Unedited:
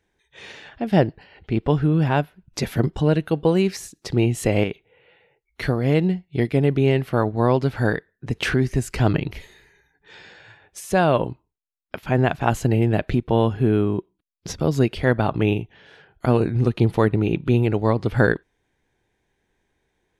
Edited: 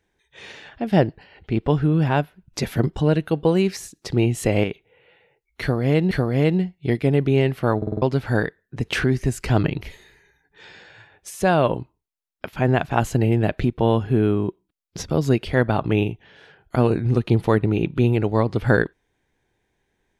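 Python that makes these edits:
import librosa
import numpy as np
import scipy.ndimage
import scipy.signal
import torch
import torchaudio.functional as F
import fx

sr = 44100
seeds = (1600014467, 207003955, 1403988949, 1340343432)

y = fx.edit(x, sr, fx.repeat(start_s=5.61, length_s=0.5, count=2),
    fx.stutter_over(start_s=7.27, slice_s=0.05, count=5), tone=tone)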